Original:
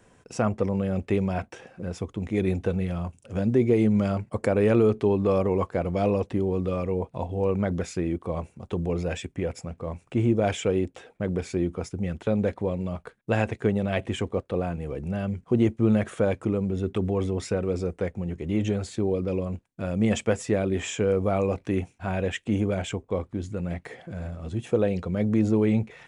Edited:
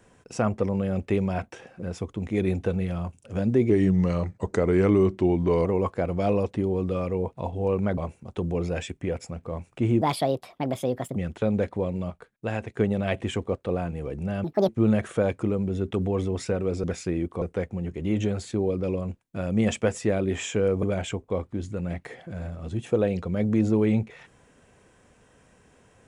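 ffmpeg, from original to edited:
-filter_complex "[0:a]asplit=13[a][b][c][d][e][f][g][h][i][j][k][l][m];[a]atrim=end=3.704[n];[b]atrim=start=3.7:end=5.42,asetpts=PTS-STARTPTS,asetrate=38808,aresample=44100,atrim=end_sample=86195,asetpts=PTS-STARTPTS[o];[c]atrim=start=5.416:end=7.742[p];[d]atrim=start=8.318:end=10.364[q];[e]atrim=start=10.36:end=12.01,asetpts=PTS-STARTPTS,asetrate=63504,aresample=44100,atrim=end_sample=50531,asetpts=PTS-STARTPTS[r];[f]atrim=start=12.006:end=12.952[s];[g]atrim=start=12.948:end=13.622,asetpts=PTS-STARTPTS,volume=-5.5dB[t];[h]atrim=start=13.618:end=15.294[u];[i]atrim=start=15.29:end=15.71,asetpts=PTS-STARTPTS,asetrate=74970,aresample=44100,atrim=end_sample=10895,asetpts=PTS-STARTPTS[v];[j]atrim=start=15.706:end=17.862[w];[k]atrim=start=7.738:end=8.322[x];[l]atrim=start=17.858:end=21.272[y];[m]atrim=start=22.628[z];[n][o]acrossfade=d=0.004:c1=hsin:c2=hsin[aa];[aa][p]acrossfade=d=0.004:c1=hsin:c2=hsin[ab];[ab][q]acrossfade=d=0.004:c1=hsin:c2=hsin[ac];[ac][r]acrossfade=d=0.004:c1=hsin:c2=hsin[ad];[ad][s]acrossfade=d=0.004:c1=hsin:c2=hsin[ae];[ae][t]acrossfade=d=0.004:c1=hsin:c2=hsin[af];[af][u]acrossfade=d=0.004:c1=hsin:c2=hsin[ag];[ag][v]acrossfade=d=0.004:c1=hsin:c2=hsin[ah];[ah][w]acrossfade=d=0.004:c1=hsin:c2=hsin[ai];[ai][x]acrossfade=d=0.004:c1=hsin:c2=hsin[aj];[aj][y]acrossfade=d=0.004:c1=hsin:c2=hsin[ak];[ak][z]acrossfade=d=0.004:c1=hsin:c2=hsin"

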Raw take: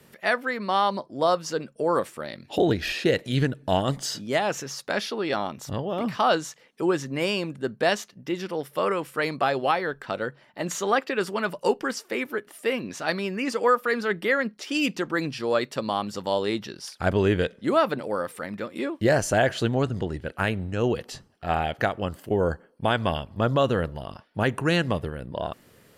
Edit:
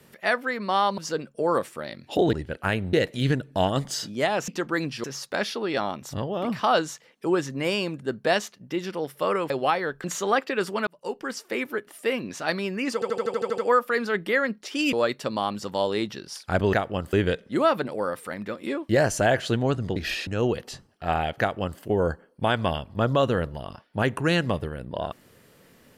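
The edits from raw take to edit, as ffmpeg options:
-filter_complex "[0:a]asplit=22[a][b][c][d][e][f][g][h][i][j][k][l][m][n][o][p][q][r][s][t][u][v];[a]atrim=end=0.982[w];[b]atrim=start=1.388:end=2.742[x];[c]atrim=start=20.078:end=20.682[y];[d]atrim=start=3.048:end=4.602[z];[e]atrim=start=14.888:end=15.452[aa];[f]atrim=start=4.598:end=9.062[ab];[g]atrim=start=9.508:end=10.052[ac];[h]atrim=start=10.638:end=11.47,asetpts=PTS-STARTPTS,afade=t=out:st=0.828:d=0.004:c=hsin[ad];[i]atrim=start=11.47:end=13.622,asetpts=PTS-STARTPTS,afade=t=in:d=0.63[ae];[j]atrim=start=13.538:end=13.622[af];[k]atrim=start=13.538:end=13.622[ag];[l]atrim=start=13.538:end=13.622[ah];[m]atrim=start=13.538:end=13.622[ai];[n]atrim=start=13.538:end=13.622[aj];[o]atrim=start=13.538:end=13.622[ak];[p]atrim=start=13.538:end=13.622[al];[q]atrim=start=13.538:end=14.892[am];[r]atrim=start=15.448:end=17.252[an];[s]atrim=start=21.808:end=22.212[ao];[t]atrim=start=17.248:end=20.082[ap];[u]atrim=start=2.738:end=3.052[aq];[v]atrim=start=20.678[ar];[w][x]acrossfade=d=0.004:c1=hsin:c2=hsin[as];[as][y]acrossfade=d=0.004:c1=hsin:c2=hsin[at];[at][z]acrossfade=d=0.004:c1=hsin:c2=hsin[au];[au][aa]acrossfade=d=0.004:c1=hsin:c2=hsin[av];[av][ab]acrossfade=d=0.004:c1=hsin:c2=hsin[aw];[aw][ac]acrossfade=d=0.004:c1=hsin:c2=hsin[ax];[ad][ae]concat=n=2:v=0:a=1[ay];[ax][ay]acrossfade=d=0.004:c1=hsin:c2=hsin[az];[az][af]acrossfade=d=0.004:c1=hsin:c2=hsin[ba];[ba][ag]acrossfade=d=0.004:c1=hsin:c2=hsin[bb];[bb][ah]acrossfade=d=0.004:c1=hsin:c2=hsin[bc];[bc][ai]acrossfade=d=0.004:c1=hsin:c2=hsin[bd];[bd][aj]acrossfade=d=0.004:c1=hsin:c2=hsin[be];[be][ak]acrossfade=d=0.004:c1=hsin:c2=hsin[bf];[bf][al]acrossfade=d=0.004:c1=hsin:c2=hsin[bg];[bg][am]acrossfade=d=0.004:c1=hsin:c2=hsin[bh];[bh][an]acrossfade=d=0.004:c1=hsin:c2=hsin[bi];[bi][ao]acrossfade=d=0.004:c1=hsin:c2=hsin[bj];[bj][ap]acrossfade=d=0.004:c1=hsin:c2=hsin[bk];[bk][aq]acrossfade=d=0.004:c1=hsin:c2=hsin[bl];[bl][ar]acrossfade=d=0.004:c1=hsin:c2=hsin"

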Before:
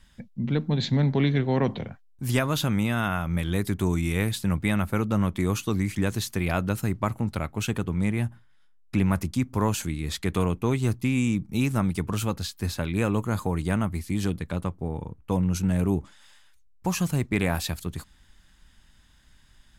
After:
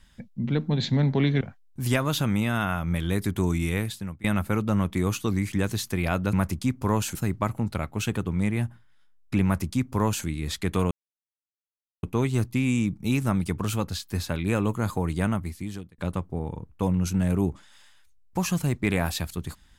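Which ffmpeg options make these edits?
-filter_complex "[0:a]asplit=7[a][b][c][d][e][f][g];[a]atrim=end=1.412[h];[b]atrim=start=1.838:end=4.67,asetpts=PTS-STARTPTS,afade=t=out:st=2.252:d=0.58:silence=0.0707946[i];[c]atrim=start=4.67:end=6.762,asetpts=PTS-STARTPTS,afade=t=in:d=0.004:c=hsin:silence=0.0707946[j];[d]atrim=start=9.048:end=9.872[k];[e]atrim=start=6.758:end=10.52,asetpts=PTS-STARTPTS,afade=t=out:st=3.758:d=0.004:c=hsin,apad=pad_dur=1.12[l];[f]atrim=start=10.52:end=14.47,asetpts=PTS-STARTPTS,afade=t=in:d=0.004:c=hsin,afade=t=out:st=3.27:d=0.68[m];[g]atrim=start=14.47,asetpts=PTS-STARTPTS,afade=t=in:d=0.004:c=hsin[n];[i][j]concat=n=2:v=0:a=1[o];[h][o]acrossfade=d=0.004:c1=hsin:c2=hsin[p];[p][k]acrossfade=d=0.004:c1=hsin:c2=hsin[q];[l][m][n]concat=n=3:v=0:a=1[r];[q][r]acrossfade=d=0.004:c1=hsin:c2=hsin"

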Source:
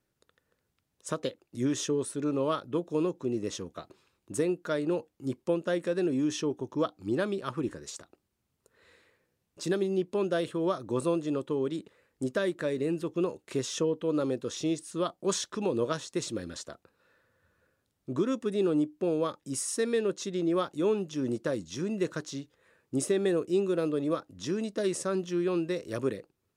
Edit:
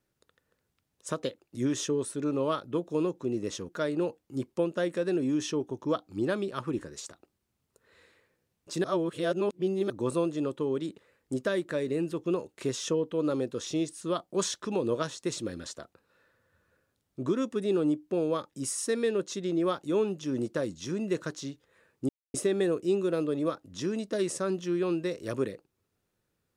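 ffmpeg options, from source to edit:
-filter_complex "[0:a]asplit=5[a][b][c][d][e];[a]atrim=end=3.692[f];[b]atrim=start=4.588:end=9.742[g];[c]atrim=start=9.738:end=10.802,asetpts=PTS-STARTPTS,areverse[h];[d]atrim=start=10.798:end=22.99,asetpts=PTS-STARTPTS,afade=t=out:st=12.188:d=0.004:c=hsin,apad=pad_dur=0.25[i];[e]atrim=start=22.99,asetpts=PTS-STARTPTS,afade=t=in:d=0.004:c=hsin[j];[f][g]acrossfade=d=0.004:c1=hsin:c2=hsin[k];[k][h]acrossfade=d=0.004:c1=hsin:c2=hsin[l];[i][j]concat=n=2:v=0:a=1[m];[l][m]acrossfade=d=0.004:c1=hsin:c2=hsin"

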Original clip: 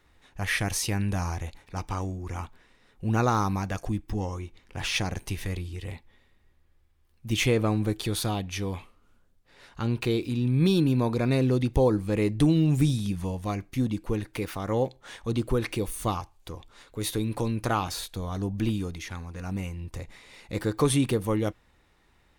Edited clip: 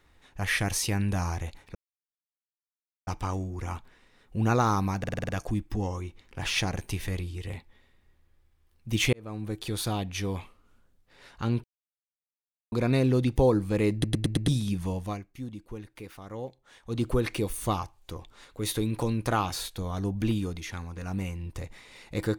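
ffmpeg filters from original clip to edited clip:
-filter_complex "[0:a]asplit=18[a][b][c][d][e][f][g][h][i][j][k][l][m][n][o][p][q][r];[a]atrim=end=1.75,asetpts=PTS-STARTPTS,afade=t=out:st=1.746:d=0.004:c=hsin,apad=pad_dur=1.32[s];[b]atrim=start=1.75:end=3.722,asetpts=PTS-STARTPTS,afade=t=in:d=0.004:c=hsin[t];[c]atrim=start=3.668:end=3.722[u];[d]atrim=start=3.668:end=3.722[v];[e]atrim=start=3.668:end=3.722[w];[f]atrim=start=3.668:end=3.722[x];[g]atrim=start=3.668:end=3.722[y];[h]atrim=start=3.668:end=7.51,asetpts=PTS-STARTPTS,afade=t=out:st=3.838:d=0.004:c=hsin[z];[i]atrim=start=7.51:end=10.02,asetpts=PTS-STARTPTS,afade=t=in:d=1.21:c=qsin,afade=t=out:st=2.506:d=0.004:c=hsin[aa];[j]atrim=start=10.02:end=11.1,asetpts=PTS-STARTPTS,volume=0[ab];[k]atrim=start=11.1:end=12.422,asetpts=PTS-STARTPTS,afade=t=in:d=0.004:c=hsin[ac];[l]atrim=start=12.308:end=12.422[ad];[m]atrim=start=12.308:end=12.422[ae];[n]atrim=start=12.308:end=12.422[af];[o]atrim=start=12.308:end=12.422[ag];[p]atrim=start=12.858:end=13.62,asetpts=PTS-STARTPTS,afade=t=out:st=0.542:d=0.22:silence=0.266073[ah];[q]atrim=start=13.62:end=15.2,asetpts=PTS-STARTPTS,volume=-11.5dB[ai];[r]atrim=start=15.2,asetpts=PTS-STARTPTS,afade=t=in:d=0.22:silence=0.266073[aj];[s][t]concat=n=2:v=0:a=1[ak];[ak][u]acrossfade=d=0.004:c1=hsin:c2=hsin[al];[al][v]acrossfade=d=0.004:c1=hsin:c2=hsin[am];[am][w]acrossfade=d=0.004:c1=hsin:c2=hsin[an];[an][x]acrossfade=d=0.004:c1=hsin:c2=hsin[ao];[ao][y]acrossfade=d=0.004:c1=hsin:c2=hsin[ap];[z][aa][ab][ac]concat=n=4:v=0:a=1[aq];[ap][aq]acrossfade=d=0.004:c1=hsin:c2=hsin[ar];[ar][ad]acrossfade=d=0.004:c1=hsin:c2=hsin[as];[as][ae]acrossfade=d=0.004:c1=hsin:c2=hsin[at];[at][af]acrossfade=d=0.004:c1=hsin:c2=hsin[au];[au][ag]acrossfade=d=0.004:c1=hsin:c2=hsin[av];[ah][ai][aj]concat=n=3:v=0:a=1[aw];[av][aw]acrossfade=d=0.004:c1=hsin:c2=hsin"

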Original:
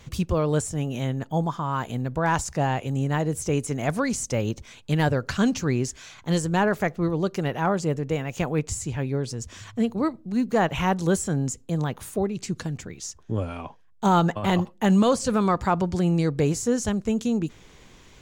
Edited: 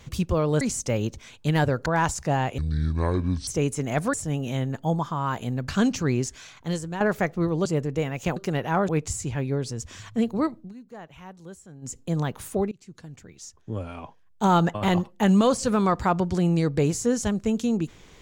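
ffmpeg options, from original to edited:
-filter_complex "[0:a]asplit=14[a][b][c][d][e][f][g][h][i][j][k][l][m][n];[a]atrim=end=0.612[o];[b]atrim=start=4.048:end=5.302[p];[c]atrim=start=2.158:end=2.884[q];[d]atrim=start=2.88:end=3.39,asetpts=PTS-STARTPTS,asetrate=25137,aresample=44100[r];[e]atrim=start=3.386:end=4.052[s];[f]atrim=start=0.608:end=2.162[t];[g]atrim=start=5.298:end=6.62,asetpts=PTS-STARTPTS,afade=t=out:st=0.682:d=0.64:silence=0.266073[u];[h]atrim=start=6.62:end=7.272,asetpts=PTS-STARTPTS,afade=t=in:d=0.004:c=hsin:silence=0.266073[v];[i]atrim=start=7.788:end=8.502[w];[j]atrim=start=7.268:end=7.792[x];[k]atrim=start=8.498:end=10.35,asetpts=PTS-STARTPTS,afade=t=out:st=1.712:d=0.14:silence=0.0944061[y];[l]atrim=start=10.35:end=11.43,asetpts=PTS-STARTPTS,volume=-20.5dB[z];[m]atrim=start=11.43:end=12.33,asetpts=PTS-STARTPTS,afade=t=in:d=0.14:silence=0.0944061,afade=t=out:st=0.896:d=0.004:c=hsin:silence=0.0707946[aa];[n]atrim=start=12.33,asetpts=PTS-STARTPTS,afade=t=in:d=1.85:silence=0.0707946[ab];[o][p]acrossfade=d=0.004:c1=hsin:c2=hsin[ac];[ac][q]acrossfade=d=0.004:c1=hsin:c2=hsin[ad];[ad][r]acrossfade=d=0.004:c1=hsin:c2=hsin[ae];[ae][s]acrossfade=d=0.004:c1=hsin:c2=hsin[af];[af][t]acrossfade=d=0.004:c1=hsin:c2=hsin[ag];[u][v]concat=n=2:v=0:a=1[ah];[ag][ah]acrossfade=d=0.004:c1=hsin:c2=hsin[ai];[ai][w]acrossfade=d=0.004:c1=hsin:c2=hsin[aj];[aj][x]acrossfade=d=0.004:c1=hsin:c2=hsin[ak];[y][z][aa][ab]concat=n=4:v=0:a=1[al];[ak][al]acrossfade=d=0.004:c1=hsin:c2=hsin"

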